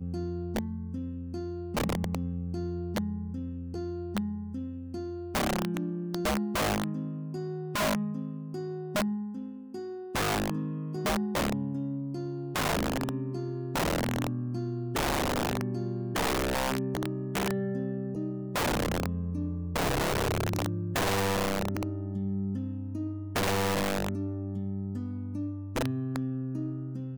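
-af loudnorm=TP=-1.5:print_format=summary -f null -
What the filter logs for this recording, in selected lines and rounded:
Input Integrated:    -32.1 LUFS
Input True Peak:     -19.2 dBTP
Input LRA:             4.0 LU
Input Threshold:     -42.1 LUFS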